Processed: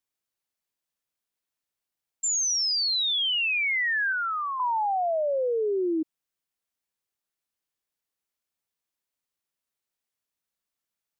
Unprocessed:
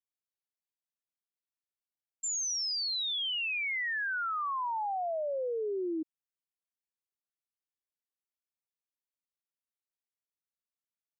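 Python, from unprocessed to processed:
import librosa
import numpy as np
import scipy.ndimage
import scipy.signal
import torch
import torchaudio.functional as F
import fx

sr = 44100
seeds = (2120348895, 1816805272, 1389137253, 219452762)

y = fx.highpass(x, sr, hz=1300.0, slope=12, at=(4.12, 4.6))
y = F.gain(torch.from_numpy(y), 7.5).numpy()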